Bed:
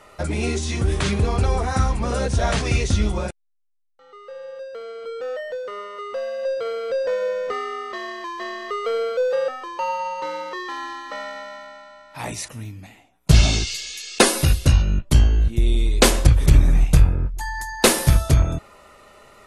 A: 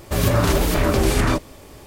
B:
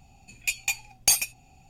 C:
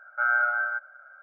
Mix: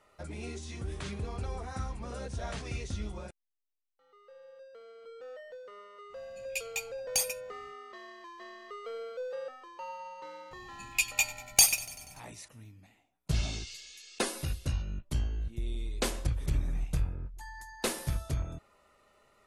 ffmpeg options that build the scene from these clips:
-filter_complex "[2:a]asplit=2[a][b];[0:a]volume=-17dB[c];[b]asplit=7[d][e][f][g][h][i][j];[e]adelay=96,afreqshift=-31,volume=-18dB[k];[f]adelay=192,afreqshift=-62,volume=-21.9dB[l];[g]adelay=288,afreqshift=-93,volume=-25.8dB[m];[h]adelay=384,afreqshift=-124,volume=-29.6dB[n];[i]adelay=480,afreqshift=-155,volume=-33.5dB[o];[j]adelay=576,afreqshift=-186,volume=-37.4dB[p];[d][k][l][m][n][o][p]amix=inputs=7:normalize=0[q];[a]atrim=end=1.69,asetpts=PTS-STARTPTS,volume=-9dB,afade=t=in:d=0.1,afade=t=out:st=1.59:d=0.1,adelay=6080[r];[q]atrim=end=1.69,asetpts=PTS-STARTPTS,volume=-0.5dB,afade=t=in:d=0.004:c=hsin,afade=t=out:st=1.686:d=0.004:c=hsin,adelay=10510[s];[c][r][s]amix=inputs=3:normalize=0"

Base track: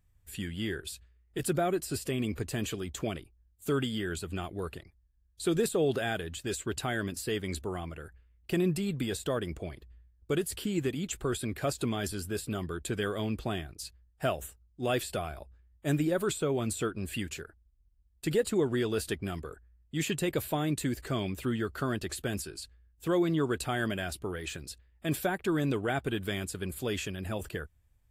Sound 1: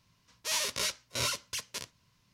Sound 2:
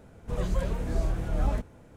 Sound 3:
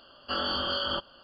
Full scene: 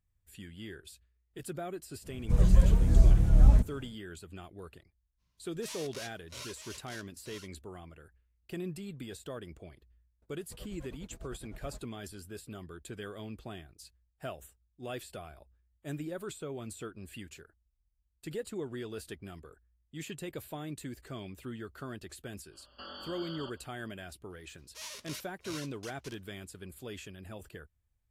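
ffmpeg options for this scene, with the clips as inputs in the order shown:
-filter_complex "[2:a]asplit=2[a][b];[1:a]asplit=2[c][d];[0:a]volume=-10.5dB[e];[a]bass=f=250:g=13,treble=f=4k:g=7[f];[c]aecho=1:1:935:0.473[g];[b]tremolo=f=9.8:d=0.95[h];[3:a]alimiter=level_in=3dB:limit=-24dB:level=0:latency=1:release=71,volume=-3dB[i];[f]atrim=end=1.96,asetpts=PTS-STARTPTS,volume=-5dB,afade=t=in:d=0.1,afade=t=out:st=1.86:d=0.1,adelay=2010[j];[g]atrim=end=2.33,asetpts=PTS-STARTPTS,volume=-13.5dB,afade=t=in:d=0.05,afade=t=out:st=2.28:d=0.05,adelay=227997S[k];[h]atrim=end=1.96,asetpts=PTS-STARTPTS,volume=-16.5dB,afade=t=in:d=0.004:c=hsin,afade=t=out:st=1.956:d=0.004:c=hsin,adelay=10220[l];[i]atrim=end=1.23,asetpts=PTS-STARTPTS,volume=-10dB,afade=t=in:d=0.05,afade=t=out:st=1.18:d=0.05,adelay=22500[m];[d]atrim=end=2.33,asetpts=PTS-STARTPTS,volume=-13dB,afade=t=in:d=0.004:c=hsin,afade=t=out:st=2.326:d=0.004:c=hsin,adelay=24300[n];[e][j][k][l][m][n]amix=inputs=6:normalize=0"

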